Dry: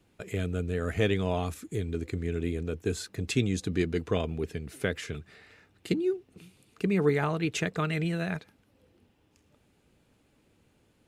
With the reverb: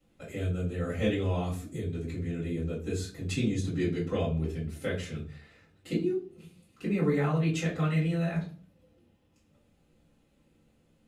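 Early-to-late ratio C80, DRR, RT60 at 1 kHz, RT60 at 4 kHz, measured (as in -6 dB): 14.5 dB, -9.5 dB, 0.35 s, 0.30 s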